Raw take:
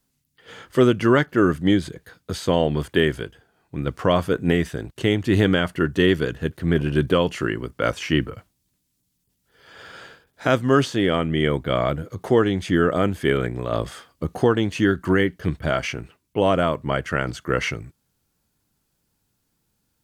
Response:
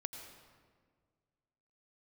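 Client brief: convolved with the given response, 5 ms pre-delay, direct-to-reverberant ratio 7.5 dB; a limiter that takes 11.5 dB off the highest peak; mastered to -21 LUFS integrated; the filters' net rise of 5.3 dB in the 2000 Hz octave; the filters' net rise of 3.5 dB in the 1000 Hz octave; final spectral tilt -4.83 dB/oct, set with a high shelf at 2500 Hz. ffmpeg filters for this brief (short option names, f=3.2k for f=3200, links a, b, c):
-filter_complex "[0:a]equalizer=f=1k:t=o:g=3,equalizer=f=2k:t=o:g=8,highshelf=f=2.5k:g=-5.5,alimiter=limit=-12dB:level=0:latency=1,asplit=2[a][b];[1:a]atrim=start_sample=2205,adelay=5[c];[b][c]afir=irnorm=-1:irlink=0,volume=-6dB[d];[a][d]amix=inputs=2:normalize=0,volume=4dB"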